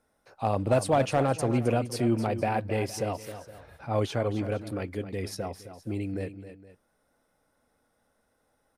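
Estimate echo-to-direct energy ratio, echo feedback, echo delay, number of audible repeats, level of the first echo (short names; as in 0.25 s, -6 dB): -11.0 dB, no steady repeat, 0.265 s, 2, -11.5 dB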